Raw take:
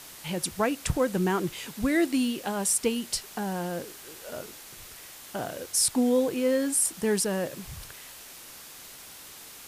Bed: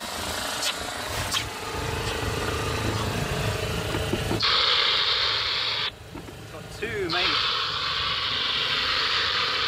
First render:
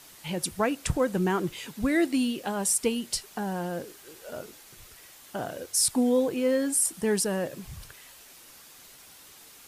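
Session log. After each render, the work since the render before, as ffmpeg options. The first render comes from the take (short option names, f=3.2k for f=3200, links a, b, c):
-af "afftdn=nr=6:nf=-46"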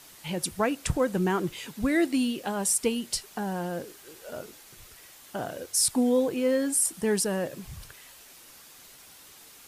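-af anull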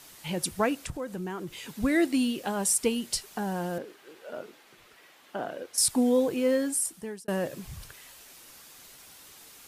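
-filter_complex "[0:a]asettb=1/sr,asplit=3[a][b][c];[a]atrim=end=0.804[d];[b]atrim=start=0.8:end=1.69,asetpts=PTS-STARTPTS,afade=t=in:d=0.004:c=qsin,afade=t=out:st=0.886:d=0.004:c=qsin,acompressor=threshold=-39dB:ratio=2:attack=3.2:release=140:knee=1:detection=peak[e];[c]atrim=start=1.686[f];[d][e]acrossfade=d=0.004:c1=hsin:c2=qsin[g];[g][f]acrossfade=d=0.004:c1=qsin:c2=hsin,asettb=1/sr,asplit=3[h][i][j];[h]atrim=end=3.784[k];[i]atrim=start=3.78:end=5.78,asetpts=PTS-STARTPTS,afade=t=in:d=0.004:c=qsin,afade=t=out:st=1.996:d=0.004:c=qsin,acrossover=split=180 3700:gain=0.126 1 0.2[l][m][n];[l][m][n]amix=inputs=3:normalize=0[o];[j]atrim=start=5.776[p];[k][o]acrossfade=d=0.004:c1=hsin:c2=qsin[q];[q][p]acrossfade=d=0.004:c1=qsin:c2=hsin,asplit=2[r][s];[r]atrim=end=7.28,asetpts=PTS-STARTPTS,afade=t=out:st=6.53:d=0.75[t];[s]atrim=start=7.28,asetpts=PTS-STARTPTS,afade=t=in:d=0.004:c=hsin[u];[t][u]concat=n=2:v=0:a=1"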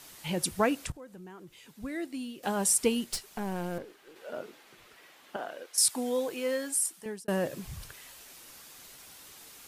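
-filter_complex "[0:a]asettb=1/sr,asplit=3[a][b][c];[a]atrim=end=3.044[d];[b]atrim=start=3.04:end=4.16,asetpts=PTS-STARTPTS,afade=t=in:d=0.004:c=qsin,afade=t=out:st=1.116:d=0.004:c=qsin,aeval=exprs='(tanh(20*val(0)+0.7)-tanh(0.7))/20':c=same[e];[c]atrim=start=4.156[f];[d][e]acrossfade=d=0.004:c1=hsin:c2=qsin[g];[g][f]acrossfade=d=0.004:c1=qsin:c2=hsin,asettb=1/sr,asplit=3[h][i][j];[h]atrim=end=5.364[k];[i]atrim=start=5.36:end=7.06,asetpts=PTS-STARTPTS,afade=t=in:d=0.004:c=qsin,afade=t=out:st=1.696:d=0.004:c=qsin,highpass=f=820:p=1[l];[j]atrim=start=7.056[m];[k][l]acrossfade=d=0.004:c1=hsin:c2=qsin[n];[n][m]acrossfade=d=0.004:c1=qsin:c2=hsin,asplit=3[o][p][q];[o]atrim=end=0.922[r];[p]atrim=start=0.918:end=2.432,asetpts=PTS-STARTPTS,volume=-12dB[s];[q]atrim=start=2.428[t];[r][s]acrossfade=d=0.004:c1=hsin:c2=hsin[u];[u][t]acrossfade=d=0.004:c1=hsin:c2=hsin"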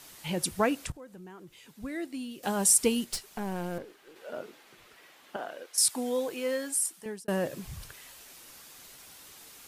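-filter_complex "[0:a]asettb=1/sr,asplit=3[a][b][c];[a]atrim=end=2.314[d];[b]atrim=start=2.31:end=3.05,asetpts=PTS-STARTPTS,afade=t=in:d=0.004:c=qsin,afade=t=out:st=0.736:d=0.004:c=qsin,bass=f=250:g=2,treble=f=4k:g=4[e];[c]atrim=start=3.046[f];[d][e]acrossfade=d=0.004:c1=hsin:c2=qsin[g];[g][f]acrossfade=d=0.004:c1=qsin:c2=hsin"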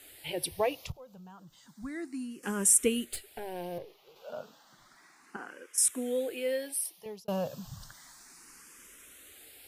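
-filter_complex "[0:a]asplit=2[a][b];[b]afreqshift=0.32[c];[a][c]amix=inputs=2:normalize=1"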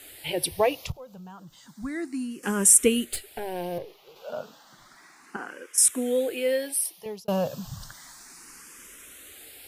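-af "volume=6.5dB"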